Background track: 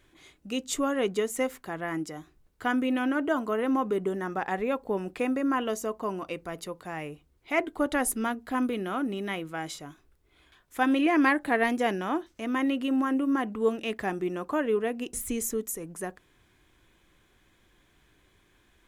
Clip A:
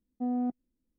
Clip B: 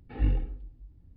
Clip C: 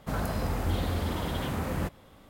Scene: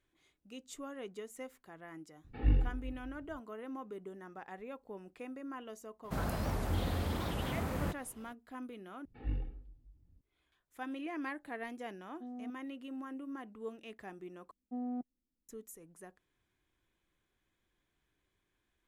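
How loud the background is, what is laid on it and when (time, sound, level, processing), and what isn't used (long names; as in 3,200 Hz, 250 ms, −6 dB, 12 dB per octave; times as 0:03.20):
background track −17.5 dB
0:02.24: mix in B −2.5 dB + slap from a distant wall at 69 metres, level −23 dB
0:06.04: mix in C −5 dB + wow of a warped record 78 rpm, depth 250 cents
0:09.05: overwrite with B −11 dB
0:12.00: mix in A −15 dB
0:14.51: overwrite with A −8.5 dB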